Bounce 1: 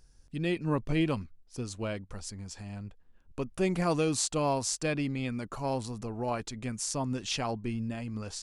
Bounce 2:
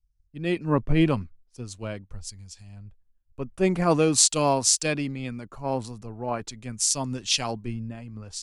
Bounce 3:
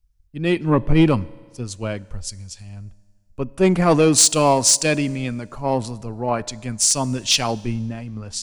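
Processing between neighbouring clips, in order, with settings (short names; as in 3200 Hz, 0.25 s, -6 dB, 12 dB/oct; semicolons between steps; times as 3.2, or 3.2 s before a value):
three-band expander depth 100%; gain +3.5 dB
soft clip -13 dBFS, distortion -17 dB; reverb RT60 1.7 s, pre-delay 3 ms, DRR 20.5 dB; gain +7.5 dB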